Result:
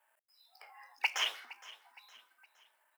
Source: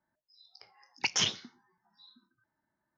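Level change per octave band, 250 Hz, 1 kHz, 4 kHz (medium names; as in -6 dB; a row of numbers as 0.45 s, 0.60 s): under -25 dB, +1.0 dB, -4.5 dB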